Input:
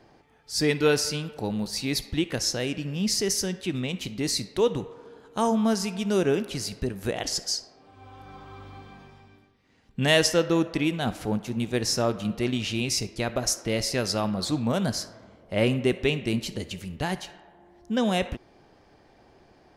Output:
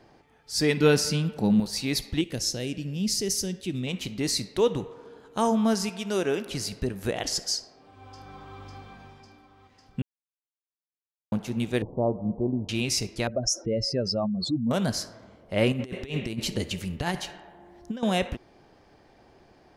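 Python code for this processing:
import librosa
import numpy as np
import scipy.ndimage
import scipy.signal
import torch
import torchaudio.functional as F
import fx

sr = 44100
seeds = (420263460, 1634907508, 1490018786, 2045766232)

y = fx.peak_eq(x, sr, hz=190.0, db=12.0, octaves=0.77, at=(0.77, 1.6))
y = fx.peak_eq(y, sr, hz=1200.0, db=-12.0, octaves=2.0, at=(2.21, 3.87))
y = fx.low_shelf(y, sr, hz=250.0, db=-10.5, at=(5.89, 6.46))
y = fx.echo_throw(y, sr, start_s=7.58, length_s=0.99, ms=550, feedback_pct=75, wet_db=-10.0)
y = fx.steep_lowpass(y, sr, hz=990.0, slope=72, at=(11.82, 12.69))
y = fx.spec_expand(y, sr, power=2.3, at=(13.27, 14.71))
y = fx.over_compress(y, sr, threshold_db=-29.0, ratio=-0.5, at=(15.72, 18.03))
y = fx.edit(y, sr, fx.silence(start_s=10.02, length_s=1.3), tone=tone)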